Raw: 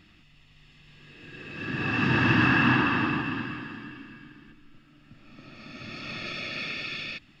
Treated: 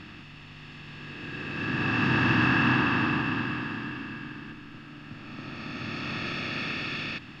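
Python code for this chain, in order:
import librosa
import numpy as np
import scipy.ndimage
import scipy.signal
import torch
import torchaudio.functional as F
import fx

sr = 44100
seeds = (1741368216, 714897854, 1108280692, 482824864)

y = fx.bin_compress(x, sr, power=0.6)
y = y * librosa.db_to_amplitude(-3.5)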